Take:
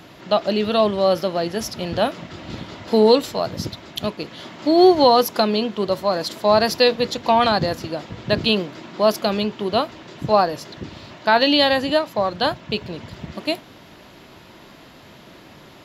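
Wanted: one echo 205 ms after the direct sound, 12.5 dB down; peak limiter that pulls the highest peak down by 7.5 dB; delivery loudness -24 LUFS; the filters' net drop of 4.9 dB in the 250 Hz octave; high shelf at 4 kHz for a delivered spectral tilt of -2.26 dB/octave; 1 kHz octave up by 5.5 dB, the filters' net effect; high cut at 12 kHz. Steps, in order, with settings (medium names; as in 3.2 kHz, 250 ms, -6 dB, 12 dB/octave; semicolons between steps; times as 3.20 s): low-pass 12 kHz; peaking EQ 250 Hz -7.5 dB; peaking EQ 1 kHz +8 dB; treble shelf 4 kHz -3.5 dB; peak limiter -7.5 dBFS; delay 205 ms -12.5 dB; trim -3.5 dB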